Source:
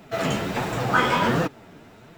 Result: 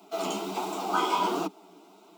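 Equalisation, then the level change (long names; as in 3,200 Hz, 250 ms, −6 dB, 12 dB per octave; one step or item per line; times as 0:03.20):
Butterworth high-pass 190 Hz 96 dB per octave
phaser with its sweep stopped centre 350 Hz, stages 8
−1.5 dB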